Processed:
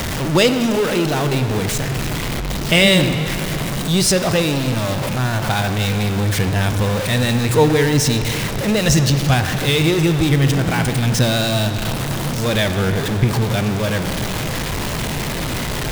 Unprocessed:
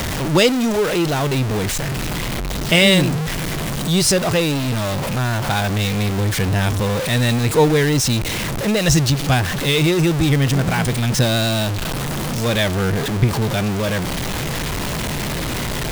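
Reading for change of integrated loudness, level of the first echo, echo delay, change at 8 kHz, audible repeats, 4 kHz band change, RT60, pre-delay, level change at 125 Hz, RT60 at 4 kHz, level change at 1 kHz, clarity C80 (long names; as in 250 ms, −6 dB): +0.5 dB, no echo audible, no echo audible, 0.0 dB, no echo audible, +0.5 dB, 2.7 s, 36 ms, +1.0 dB, 2.6 s, +0.5 dB, 9.5 dB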